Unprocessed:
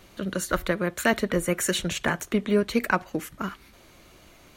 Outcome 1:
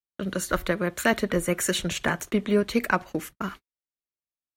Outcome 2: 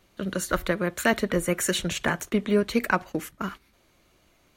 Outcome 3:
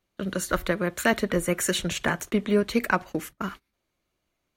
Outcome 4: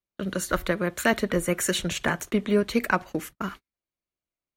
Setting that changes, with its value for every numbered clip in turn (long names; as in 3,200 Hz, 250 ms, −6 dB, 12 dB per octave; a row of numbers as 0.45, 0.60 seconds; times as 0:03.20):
noise gate, range: −56, −10, −26, −43 decibels